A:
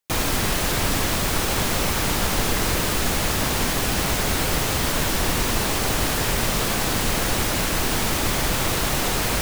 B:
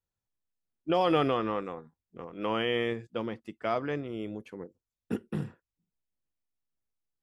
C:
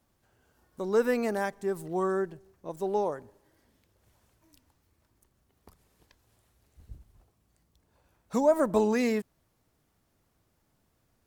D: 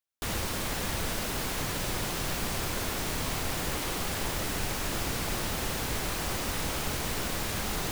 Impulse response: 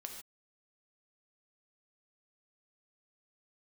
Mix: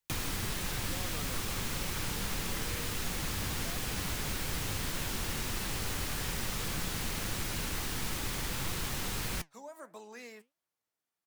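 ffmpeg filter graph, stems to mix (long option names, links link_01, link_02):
-filter_complex "[0:a]equalizer=frequency=650:width=3.8:gain=-5,volume=-1dB[link_01];[1:a]volume=-3.5dB[link_02];[2:a]highpass=frequency=1200:poles=1,adelay=1200,volume=-8dB[link_03];[3:a]volume=0.5dB[link_04];[link_01][link_02][link_03][link_04]amix=inputs=4:normalize=0,acrossover=split=200|1400[link_05][link_06][link_07];[link_05]acompressor=threshold=-31dB:ratio=4[link_08];[link_06]acompressor=threshold=-41dB:ratio=4[link_09];[link_07]acompressor=threshold=-33dB:ratio=4[link_10];[link_08][link_09][link_10]amix=inputs=3:normalize=0,flanger=delay=5.3:depth=5.4:regen=78:speed=1.6:shape=sinusoidal"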